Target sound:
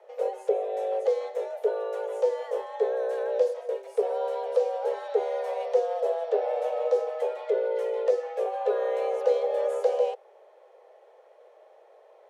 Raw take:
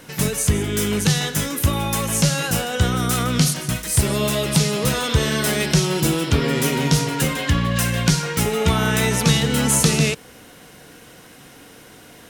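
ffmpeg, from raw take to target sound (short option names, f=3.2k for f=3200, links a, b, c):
-af "afreqshift=340,bandpass=f=530:t=q:w=2.1:csg=0,volume=-5dB"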